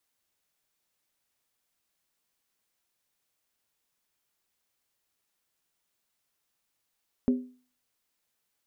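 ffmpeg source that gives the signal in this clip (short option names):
-f lavfi -i "aevalsrc='0.133*pow(10,-3*t/0.4)*sin(2*PI*251*t)+0.0422*pow(10,-3*t/0.317)*sin(2*PI*400.1*t)+0.0133*pow(10,-3*t/0.274)*sin(2*PI*536.1*t)+0.00422*pow(10,-3*t/0.264)*sin(2*PI*576.3*t)+0.00133*pow(10,-3*t/0.246)*sin(2*PI*665.9*t)':d=0.63:s=44100"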